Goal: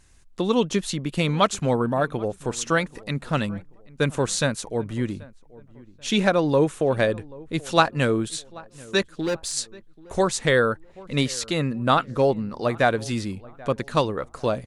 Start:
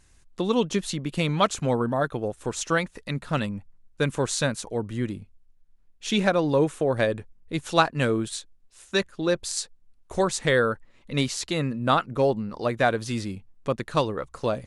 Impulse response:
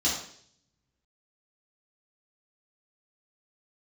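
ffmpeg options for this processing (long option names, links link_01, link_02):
-filter_complex "[0:a]asplit=3[link_01][link_02][link_03];[link_01]afade=type=out:start_time=9.12:duration=0.02[link_04];[link_02]asoftclip=type=hard:threshold=-23dB,afade=type=in:start_time=9.12:duration=0.02,afade=type=out:start_time=9.52:duration=0.02[link_05];[link_03]afade=type=in:start_time=9.52:duration=0.02[link_06];[link_04][link_05][link_06]amix=inputs=3:normalize=0,asplit=2[link_07][link_08];[link_08]adelay=784,lowpass=frequency=1500:poles=1,volume=-21.5dB,asplit=2[link_09][link_10];[link_10]adelay=784,lowpass=frequency=1500:poles=1,volume=0.37,asplit=2[link_11][link_12];[link_12]adelay=784,lowpass=frequency=1500:poles=1,volume=0.37[link_13];[link_07][link_09][link_11][link_13]amix=inputs=4:normalize=0,volume=2dB"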